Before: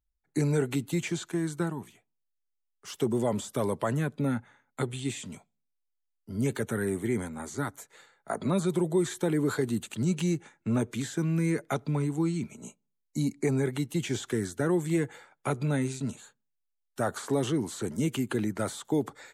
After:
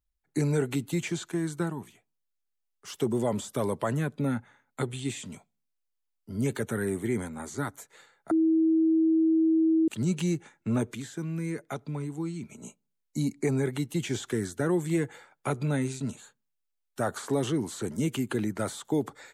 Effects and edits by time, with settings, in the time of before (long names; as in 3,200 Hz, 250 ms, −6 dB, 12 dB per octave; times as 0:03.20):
0:08.31–0:09.88: beep over 322 Hz −19.5 dBFS
0:10.95–0:12.49: clip gain −5.5 dB